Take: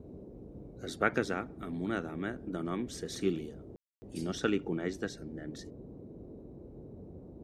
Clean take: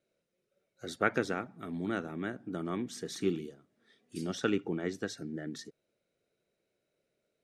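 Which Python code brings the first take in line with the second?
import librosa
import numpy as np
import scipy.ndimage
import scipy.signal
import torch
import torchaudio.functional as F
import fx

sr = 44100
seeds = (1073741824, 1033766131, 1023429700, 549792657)

y = fx.fix_ambience(x, sr, seeds[0], print_start_s=6.26, print_end_s=6.76, start_s=3.76, end_s=4.02)
y = fx.noise_reduce(y, sr, print_start_s=6.26, print_end_s=6.76, reduce_db=30.0)
y = fx.gain(y, sr, db=fx.steps((0.0, 0.0), (5.09, 4.0)))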